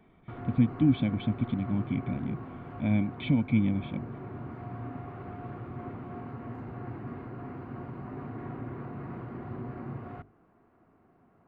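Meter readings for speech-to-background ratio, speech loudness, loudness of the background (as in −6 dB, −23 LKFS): 12.0 dB, −29.0 LKFS, −41.0 LKFS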